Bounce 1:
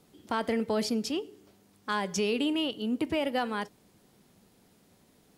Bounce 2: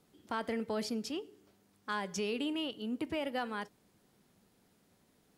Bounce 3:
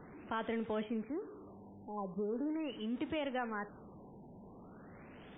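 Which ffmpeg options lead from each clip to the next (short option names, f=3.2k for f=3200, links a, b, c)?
-af "equalizer=f=1.5k:w=1.5:g=2.5,volume=-7dB"
-af "aeval=exprs='val(0)+0.5*0.00596*sgn(val(0))':c=same,afftfilt=real='re*lt(b*sr/1024,980*pow(3800/980,0.5+0.5*sin(2*PI*0.41*pts/sr)))':imag='im*lt(b*sr/1024,980*pow(3800/980,0.5+0.5*sin(2*PI*0.41*pts/sr)))':win_size=1024:overlap=0.75,volume=-2.5dB"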